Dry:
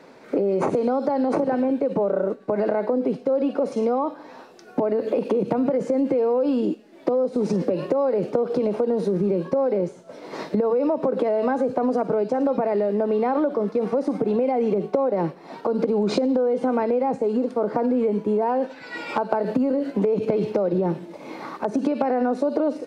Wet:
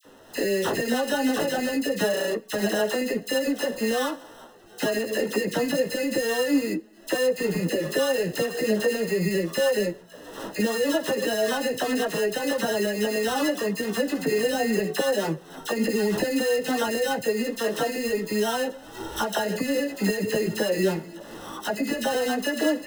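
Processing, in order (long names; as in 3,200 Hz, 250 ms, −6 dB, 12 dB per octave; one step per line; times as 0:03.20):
sample-rate reduction 2,300 Hz, jitter 0%
multi-voice chorus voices 6, 0.28 Hz, delay 14 ms, depth 4.7 ms
all-pass dispersion lows, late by 50 ms, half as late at 1,600 Hz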